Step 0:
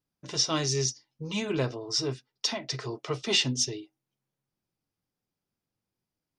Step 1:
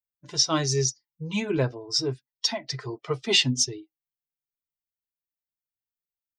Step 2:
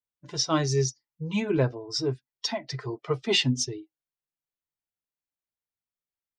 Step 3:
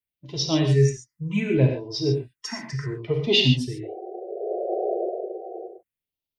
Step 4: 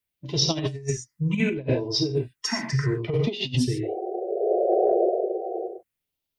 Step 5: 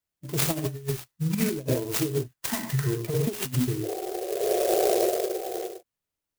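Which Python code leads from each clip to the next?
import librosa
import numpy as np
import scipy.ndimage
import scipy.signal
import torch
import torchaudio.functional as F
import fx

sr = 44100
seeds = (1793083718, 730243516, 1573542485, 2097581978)

y1 = fx.bin_expand(x, sr, power=1.5)
y1 = y1 * librosa.db_to_amplitude(5.5)
y2 = fx.high_shelf(y1, sr, hz=3100.0, db=-8.5)
y2 = y2 * librosa.db_to_amplitude(1.0)
y3 = fx.spec_paint(y2, sr, seeds[0], shape='noise', start_s=3.83, length_s=1.85, low_hz=340.0, high_hz=780.0, level_db=-29.0)
y3 = fx.phaser_stages(y3, sr, stages=4, low_hz=590.0, high_hz=1500.0, hz=0.68, feedback_pct=25)
y3 = fx.rev_gated(y3, sr, seeds[1], gate_ms=160, shape='flat', drr_db=2.5)
y3 = y3 * librosa.db_to_amplitude(3.5)
y4 = fx.over_compress(y3, sr, threshold_db=-25.0, ratio=-0.5)
y4 = y4 * librosa.db_to_amplitude(2.5)
y5 = fx.clock_jitter(y4, sr, seeds[2], jitter_ms=0.092)
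y5 = y5 * librosa.db_to_amplitude(-2.0)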